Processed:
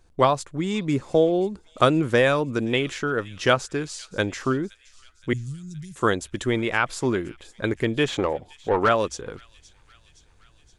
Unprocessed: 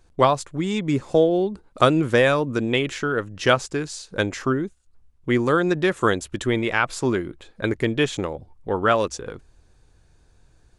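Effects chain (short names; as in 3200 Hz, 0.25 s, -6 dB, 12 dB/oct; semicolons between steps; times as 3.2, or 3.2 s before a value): 5.33–5.96 Chebyshev band-stop 140–6500 Hz, order 3; 8.08–8.89 overdrive pedal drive 18 dB, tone 1400 Hz, clips at -7.5 dBFS; thin delay 0.519 s, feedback 63%, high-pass 3000 Hz, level -17.5 dB; gain -1.5 dB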